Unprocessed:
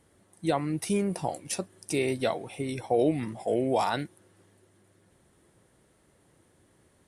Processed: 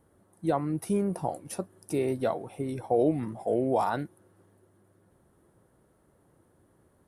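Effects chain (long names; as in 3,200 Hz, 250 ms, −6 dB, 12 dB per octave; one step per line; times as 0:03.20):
flat-topped bell 4,100 Hz −11 dB 2.5 octaves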